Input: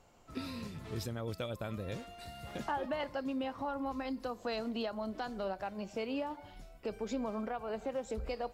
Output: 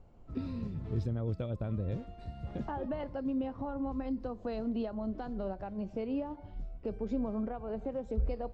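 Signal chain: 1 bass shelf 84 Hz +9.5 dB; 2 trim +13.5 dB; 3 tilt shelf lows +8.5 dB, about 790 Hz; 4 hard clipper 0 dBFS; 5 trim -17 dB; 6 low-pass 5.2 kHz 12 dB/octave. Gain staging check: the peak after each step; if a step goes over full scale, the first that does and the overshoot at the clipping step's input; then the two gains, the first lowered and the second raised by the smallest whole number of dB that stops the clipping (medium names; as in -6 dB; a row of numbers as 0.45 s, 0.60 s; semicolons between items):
-24.0 dBFS, -10.5 dBFS, -4.0 dBFS, -4.0 dBFS, -21.0 dBFS, -21.0 dBFS; nothing clips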